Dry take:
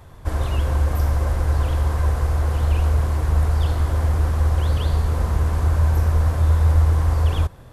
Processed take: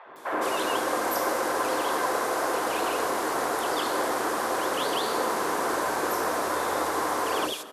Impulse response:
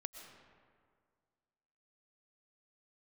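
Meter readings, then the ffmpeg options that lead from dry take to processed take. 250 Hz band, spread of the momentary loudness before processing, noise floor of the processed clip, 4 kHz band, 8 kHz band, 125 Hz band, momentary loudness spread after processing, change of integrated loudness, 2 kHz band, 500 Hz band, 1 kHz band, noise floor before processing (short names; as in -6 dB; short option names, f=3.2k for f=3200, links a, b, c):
0.0 dB, 4 LU, -37 dBFS, +6.0 dB, n/a, -34.0 dB, 1 LU, -6.5 dB, +6.5 dB, +5.0 dB, +6.5 dB, -42 dBFS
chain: -filter_complex "[0:a]highpass=f=320:w=0.5412,highpass=f=320:w=1.3066,acrossover=split=560|2700[a][b][c];[a]adelay=60[d];[c]adelay=160[e];[d][b][e]amix=inputs=3:normalize=0,asplit=2[f][g];[1:a]atrim=start_sample=2205[h];[g][h]afir=irnorm=-1:irlink=0,volume=-3dB[i];[f][i]amix=inputs=2:normalize=0,volume=4.5dB"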